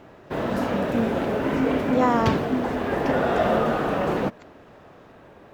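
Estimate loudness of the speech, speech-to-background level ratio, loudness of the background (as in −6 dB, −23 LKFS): −26.0 LKFS, −2.0 dB, −24.0 LKFS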